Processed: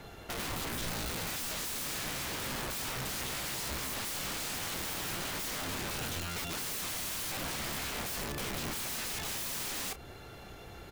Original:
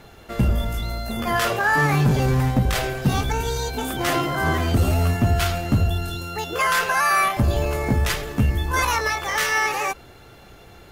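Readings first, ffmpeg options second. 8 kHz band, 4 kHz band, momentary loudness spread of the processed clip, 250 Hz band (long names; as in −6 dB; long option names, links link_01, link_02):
−4.0 dB, −7.0 dB, 2 LU, −18.0 dB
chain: -filter_complex "[0:a]aeval=exprs='(mod(18.8*val(0)+1,2)-1)/18.8':channel_layout=same,asplit=2[link_01][link_02];[link_02]adelay=30,volume=-13.5dB[link_03];[link_01][link_03]amix=inputs=2:normalize=0,acrossover=split=280[link_04][link_05];[link_05]acompressor=threshold=-36dB:ratio=2[link_06];[link_04][link_06]amix=inputs=2:normalize=0,volume=-2.5dB"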